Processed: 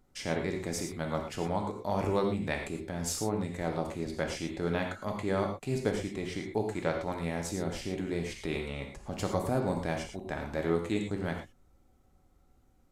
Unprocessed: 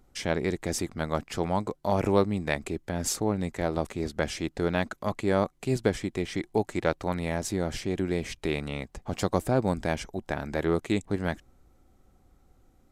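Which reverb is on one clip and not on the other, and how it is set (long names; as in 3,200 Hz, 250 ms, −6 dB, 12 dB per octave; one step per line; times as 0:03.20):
reverb whose tail is shaped and stops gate 140 ms flat, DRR 2 dB
level −6 dB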